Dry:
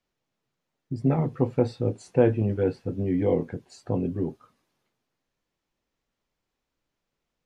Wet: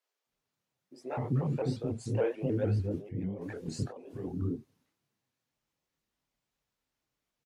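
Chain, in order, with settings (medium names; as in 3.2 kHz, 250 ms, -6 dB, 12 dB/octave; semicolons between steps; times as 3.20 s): high-pass 45 Hz; treble shelf 5.7 kHz +6 dB; in parallel at -1 dB: peak limiter -18 dBFS, peak gain reduction 11 dB; 2.84–4.20 s: on the sum: compressor with a negative ratio -25 dBFS, ratio -0.5; chorus voices 6, 0.73 Hz, delay 25 ms, depth 4.9 ms; bands offset in time highs, lows 260 ms, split 390 Hz; vibrato with a chosen wave saw up 6.8 Hz, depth 160 cents; trim -6.5 dB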